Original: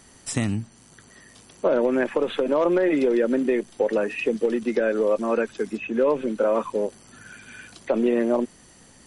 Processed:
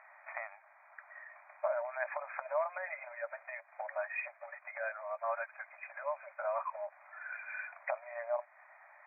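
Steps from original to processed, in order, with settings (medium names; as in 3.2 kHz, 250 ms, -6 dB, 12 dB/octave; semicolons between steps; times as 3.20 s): compression, threshold -28 dBFS, peak gain reduction 11.5 dB; brick-wall FIR band-pass 570–2500 Hz; trim +1.5 dB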